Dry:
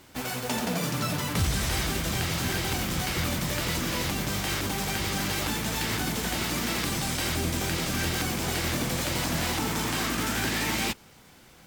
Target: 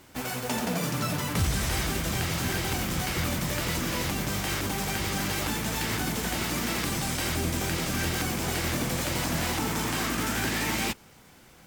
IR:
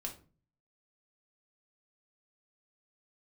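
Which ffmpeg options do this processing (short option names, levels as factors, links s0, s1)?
-af "equalizer=f=3900:w=1.5:g=-2.5"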